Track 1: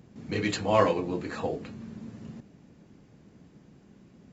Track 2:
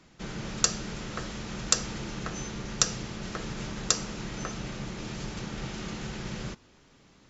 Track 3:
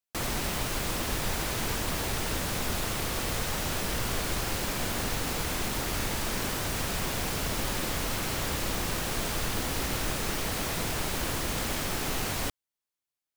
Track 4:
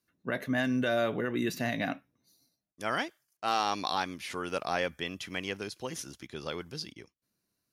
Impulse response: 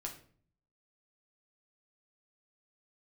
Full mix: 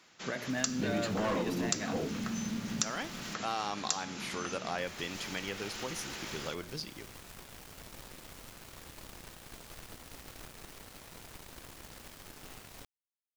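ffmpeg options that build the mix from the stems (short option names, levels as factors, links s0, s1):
-filter_complex "[0:a]equalizer=f=210:w=1.5:g=9,asoftclip=type=tanh:threshold=0.0708,adelay=500,volume=1.33[s0];[1:a]highpass=f=1100:p=1,volume=1.26[s1];[2:a]aeval=exprs='0.141*(cos(1*acos(clip(val(0)/0.141,-1,1)))-cos(1*PI/2))+0.02*(cos(7*acos(clip(val(0)/0.141,-1,1)))-cos(7*PI/2))':c=same,adelay=350,volume=0.141,asplit=3[s2][s3][s4];[s2]atrim=end=3.34,asetpts=PTS-STARTPTS,afade=t=out:st=3.336:d=0.004:c=hsin[s5];[s3]atrim=start=3.34:end=4.78,asetpts=PTS-STARTPTS,volume=0[s6];[s4]atrim=start=4.78,asetpts=PTS-STARTPTS,afade=t=in:d=0.004:c=hsin[s7];[s5][s6][s7]concat=n=3:v=0:a=1[s8];[3:a]bandreject=f=120.7:t=h:w=4,bandreject=f=241.4:t=h:w=4,bandreject=f=362.1:t=h:w=4,bandreject=f=482.8:t=h:w=4,bandreject=f=603.5:t=h:w=4,bandreject=f=724.2:t=h:w=4,bandreject=f=844.9:t=h:w=4,bandreject=f=965.6:t=h:w=4,bandreject=f=1086.3:t=h:w=4,bandreject=f=1207:t=h:w=4,bandreject=f=1327.7:t=h:w=4,bandreject=f=1448.4:t=h:w=4,bandreject=f=1569.1:t=h:w=4,bandreject=f=1689.8:t=h:w=4,bandreject=f=1810.5:t=h:w=4,bandreject=f=1931.2:t=h:w=4,bandreject=f=2051.9:t=h:w=4,bandreject=f=2172.6:t=h:w=4,bandreject=f=2293.3:t=h:w=4,bandreject=f=2414:t=h:w=4,bandreject=f=2534.7:t=h:w=4,bandreject=f=2655.4:t=h:w=4,bandreject=f=2776.1:t=h:w=4,bandreject=f=2896.8:t=h:w=4,bandreject=f=3017.5:t=h:w=4,bandreject=f=3138.2:t=h:w=4,bandreject=f=3258.9:t=h:w=4,bandreject=f=3379.6:t=h:w=4,bandreject=f=3500.3:t=h:w=4,bandreject=f=3621:t=h:w=4,bandreject=f=3741.7:t=h:w=4,bandreject=f=3862.4:t=h:w=4,bandreject=f=3983.1:t=h:w=4,bandreject=f=4103.8:t=h:w=4,bandreject=f=4224.5:t=h:w=4,bandreject=f=4345.2:t=h:w=4,bandreject=f=4465.9:t=h:w=4,bandreject=f=4586.6:t=h:w=4,bandreject=f=4707.3:t=h:w=4,bandreject=f=4828:t=h:w=4,volume=1.06[s9];[s0][s1][s8][s9]amix=inputs=4:normalize=0,acompressor=threshold=0.0158:ratio=2"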